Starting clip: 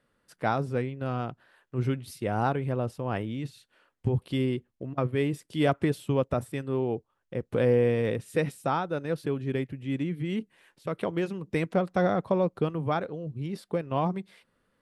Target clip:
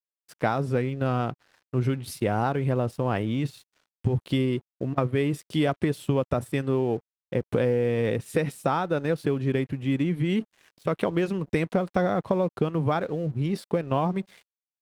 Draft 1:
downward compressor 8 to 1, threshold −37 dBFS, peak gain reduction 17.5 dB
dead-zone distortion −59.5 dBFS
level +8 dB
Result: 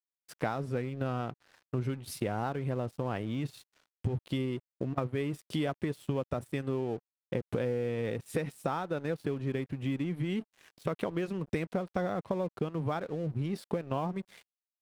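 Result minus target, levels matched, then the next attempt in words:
downward compressor: peak gain reduction +8 dB
downward compressor 8 to 1, threshold −28 dBFS, peak gain reduction 10 dB
dead-zone distortion −59.5 dBFS
level +8 dB

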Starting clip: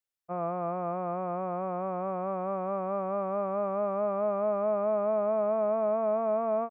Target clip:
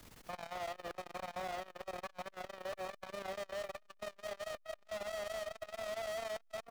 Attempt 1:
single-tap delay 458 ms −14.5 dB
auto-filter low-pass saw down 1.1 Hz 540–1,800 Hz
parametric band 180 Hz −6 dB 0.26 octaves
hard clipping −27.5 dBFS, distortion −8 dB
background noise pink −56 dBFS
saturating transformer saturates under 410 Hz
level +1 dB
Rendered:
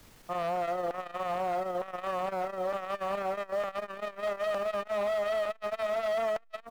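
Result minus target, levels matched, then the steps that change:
hard clipping: distortion −4 dB
change: hard clipping −38.5 dBFS, distortion −3 dB

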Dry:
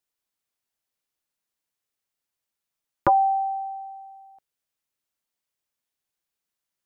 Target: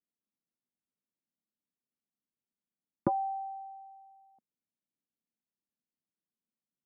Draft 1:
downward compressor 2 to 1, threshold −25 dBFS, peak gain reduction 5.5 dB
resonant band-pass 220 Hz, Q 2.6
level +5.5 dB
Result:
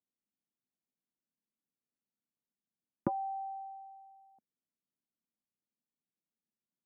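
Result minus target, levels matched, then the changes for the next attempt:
downward compressor: peak gain reduction +5.5 dB
remove: downward compressor 2 to 1, threshold −25 dBFS, peak gain reduction 5.5 dB

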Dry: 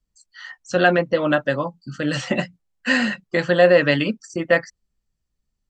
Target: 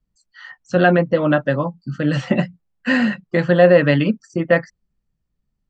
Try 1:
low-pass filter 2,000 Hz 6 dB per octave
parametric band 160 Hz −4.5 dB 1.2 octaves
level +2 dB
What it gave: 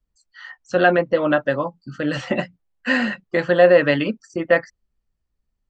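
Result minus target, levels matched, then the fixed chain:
125 Hz band −8.0 dB
low-pass filter 2,000 Hz 6 dB per octave
parametric band 160 Hz +6 dB 1.2 octaves
level +2 dB

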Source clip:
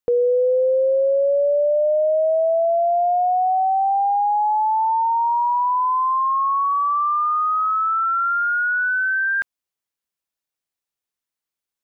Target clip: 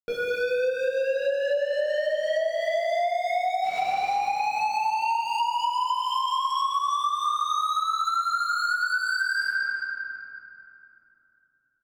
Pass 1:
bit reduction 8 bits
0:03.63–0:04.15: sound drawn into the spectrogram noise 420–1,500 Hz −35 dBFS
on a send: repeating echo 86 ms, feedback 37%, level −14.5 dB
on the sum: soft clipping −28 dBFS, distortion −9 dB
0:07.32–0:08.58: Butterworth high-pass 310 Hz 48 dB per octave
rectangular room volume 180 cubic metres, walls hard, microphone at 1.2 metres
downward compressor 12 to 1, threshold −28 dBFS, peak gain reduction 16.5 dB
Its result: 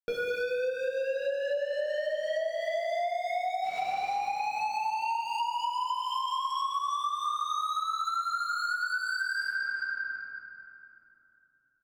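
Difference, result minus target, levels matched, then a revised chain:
downward compressor: peak gain reduction +5.5 dB
bit reduction 8 bits
0:03.63–0:04.15: sound drawn into the spectrogram noise 420–1,500 Hz −35 dBFS
on a send: repeating echo 86 ms, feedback 37%, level −14.5 dB
on the sum: soft clipping −28 dBFS, distortion −9 dB
0:07.32–0:08.58: Butterworth high-pass 310 Hz 48 dB per octave
rectangular room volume 180 cubic metres, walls hard, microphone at 1.2 metres
downward compressor 12 to 1, threshold −22 dBFS, peak gain reduction 11 dB

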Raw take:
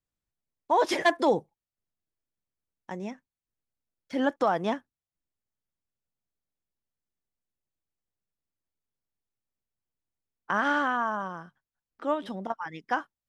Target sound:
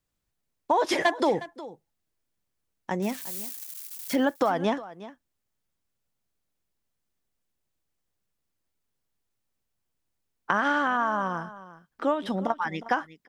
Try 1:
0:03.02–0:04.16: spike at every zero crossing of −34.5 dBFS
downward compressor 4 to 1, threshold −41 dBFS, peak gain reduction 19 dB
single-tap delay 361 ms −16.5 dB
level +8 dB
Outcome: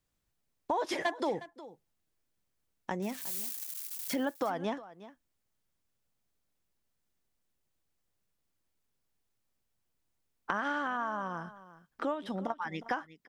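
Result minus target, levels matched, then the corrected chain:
downward compressor: peak gain reduction +8.5 dB
0:03.02–0:04.16: spike at every zero crossing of −34.5 dBFS
downward compressor 4 to 1, threshold −29.5 dBFS, peak gain reduction 10.5 dB
single-tap delay 361 ms −16.5 dB
level +8 dB

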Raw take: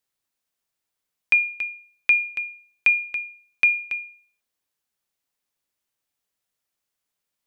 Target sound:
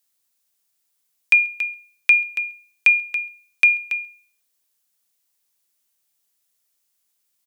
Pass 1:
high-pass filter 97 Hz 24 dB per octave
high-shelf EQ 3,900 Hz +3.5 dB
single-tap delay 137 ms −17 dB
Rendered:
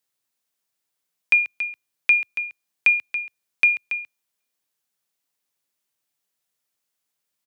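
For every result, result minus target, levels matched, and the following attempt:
echo-to-direct +12 dB; 8,000 Hz band −4.5 dB
high-pass filter 97 Hz 24 dB per octave
high-shelf EQ 3,900 Hz +3.5 dB
single-tap delay 137 ms −29 dB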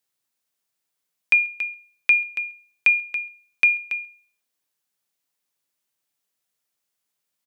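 8,000 Hz band −5.0 dB
high-pass filter 97 Hz 24 dB per octave
high-shelf EQ 3,900 Hz +13 dB
single-tap delay 137 ms −29 dB

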